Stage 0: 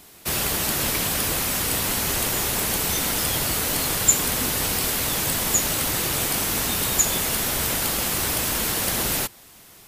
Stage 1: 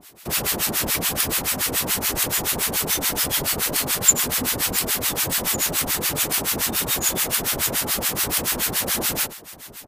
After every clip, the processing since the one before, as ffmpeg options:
ffmpeg -i in.wav -filter_complex "[0:a]lowshelf=frequency=92:gain=-8,aecho=1:1:68|651:0.251|0.126,acrossover=split=950[link_01][link_02];[link_01]aeval=exprs='val(0)*(1-1/2+1/2*cos(2*PI*7*n/s))':channel_layout=same[link_03];[link_02]aeval=exprs='val(0)*(1-1/2-1/2*cos(2*PI*7*n/s))':channel_layout=same[link_04];[link_03][link_04]amix=inputs=2:normalize=0,volume=5dB" out.wav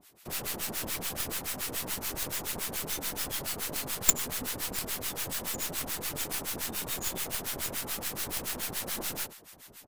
ffmpeg -i in.wav -af "aeval=exprs='0.891*(cos(1*acos(clip(val(0)/0.891,-1,1)))-cos(1*PI/2))+0.398*(cos(3*acos(clip(val(0)/0.891,-1,1)))-cos(3*PI/2))+0.0631*(cos(6*acos(clip(val(0)/0.891,-1,1)))-cos(6*PI/2))':channel_layout=same,volume=-2.5dB" out.wav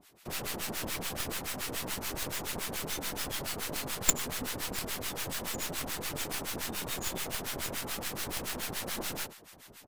ffmpeg -i in.wav -af "highshelf=frequency=7200:gain=-7,volume=1dB" out.wav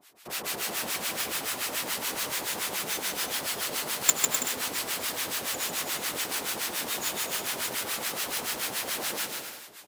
ffmpeg -i in.wav -filter_complex "[0:a]highpass=frequency=530:poles=1,asplit=2[link_01][link_02];[link_02]aecho=0:1:150|255|328.5|380|416:0.631|0.398|0.251|0.158|0.1[link_03];[link_01][link_03]amix=inputs=2:normalize=0,volume=4dB" out.wav

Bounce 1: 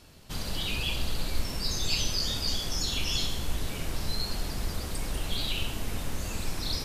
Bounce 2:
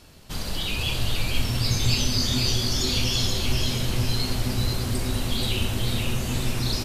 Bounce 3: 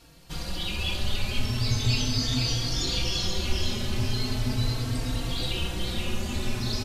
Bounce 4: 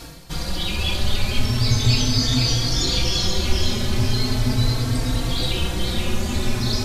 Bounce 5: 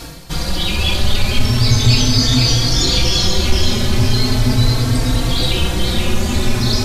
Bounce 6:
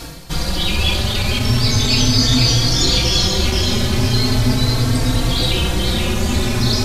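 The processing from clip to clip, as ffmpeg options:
ffmpeg -i in.wav -filter_complex "[0:a]asplit=7[link_01][link_02][link_03][link_04][link_05][link_06][link_07];[link_02]adelay=480,afreqshift=-130,volume=-3.5dB[link_08];[link_03]adelay=960,afreqshift=-260,volume=-10.1dB[link_09];[link_04]adelay=1440,afreqshift=-390,volume=-16.6dB[link_10];[link_05]adelay=1920,afreqshift=-520,volume=-23.2dB[link_11];[link_06]adelay=2400,afreqshift=-650,volume=-29.7dB[link_12];[link_07]adelay=2880,afreqshift=-780,volume=-36.3dB[link_13];[link_01][link_08][link_09][link_10][link_11][link_12][link_13]amix=inputs=7:normalize=0,volume=3.5dB" out.wav
ffmpeg -i in.wav -filter_complex "[0:a]acrossover=split=7500[link_01][link_02];[link_02]acompressor=threshold=-47dB:ratio=4:attack=1:release=60[link_03];[link_01][link_03]amix=inputs=2:normalize=0,asplit=2[link_04][link_05];[link_05]adelay=3.9,afreqshift=0.38[link_06];[link_04][link_06]amix=inputs=2:normalize=1" out.wav
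ffmpeg -i in.wav -af "equalizer=frequency=2800:width_type=o:width=0.22:gain=-6,areverse,acompressor=mode=upward:threshold=-30dB:ratio=2.5,areverse,volume=7dB" out.wav
ffmpeg -i in.wav -af "asoftclip=type=tanh:threshold=-6.5dB,volume=6.5dB" out.wav
ffmpeg -i in.wav -af "afftfilt=real='re*lt(hypot(re,im),2.82)':imag='im*lt(hypot(re,im),2.82)':win_size=1024:overlap=0.75" out.wav

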